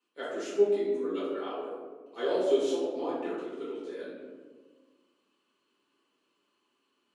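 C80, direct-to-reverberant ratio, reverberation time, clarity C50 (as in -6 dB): 2.0 dB, -12.0 dB, 1.5 s, -1.0 dB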